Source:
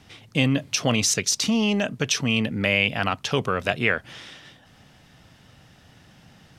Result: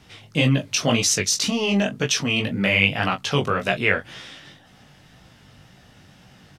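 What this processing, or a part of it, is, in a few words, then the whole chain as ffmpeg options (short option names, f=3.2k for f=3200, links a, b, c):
double-tracked vocal: -filter_complex "[0:a]asplit=2[a][b];[b]adelay=21,volume=-9.5dB[c];[a][c]amix=inputs=2:normalize=0,flanger=delay=15.5:depth=5.3:speed=1.9,volume=4.5dB"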